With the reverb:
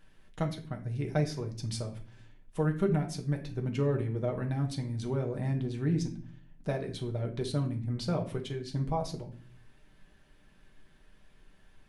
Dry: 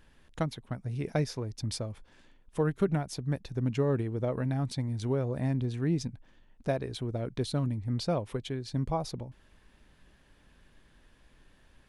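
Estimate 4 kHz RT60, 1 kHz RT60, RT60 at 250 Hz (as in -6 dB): 0.35 s, 0.40 s, 0.75 s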